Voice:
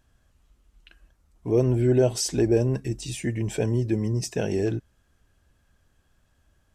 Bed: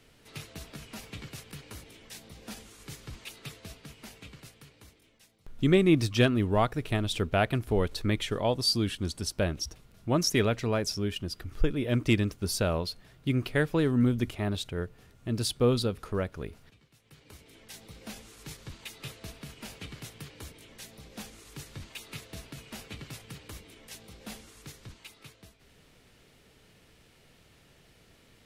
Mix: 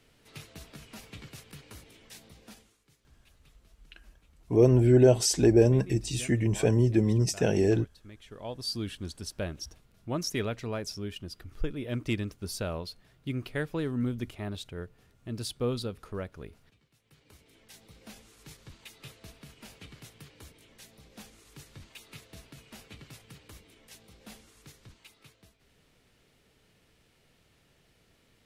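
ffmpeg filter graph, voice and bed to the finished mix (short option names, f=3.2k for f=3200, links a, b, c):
-filter_complex "[0:a]adelay=3050,volume=1dB[a];[1:a]volume=12.5dB,afade=t=out:st=2.24:d=0.58:silence=0.11885,afade=t=in:st=8.21:d=0.61:silence=0.158489[b];[a][b]amix=inputs=2:normalize=0"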